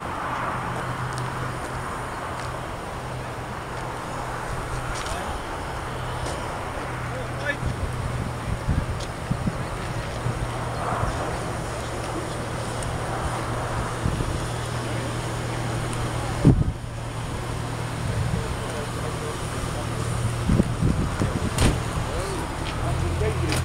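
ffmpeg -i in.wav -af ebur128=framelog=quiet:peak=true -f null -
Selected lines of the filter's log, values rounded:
Integrated loudness:
  I:         -27.5 LUFS
  Threshold: -37.5 LUFS
Loudness range:
  LRA:         5.5 LU
  Threshold: -47.6 LUFS
  LRA low:   -30.5 LUFS
  LRA high:  -25.1 LUFS
True peak:
  Peak:       -4.4 dBFS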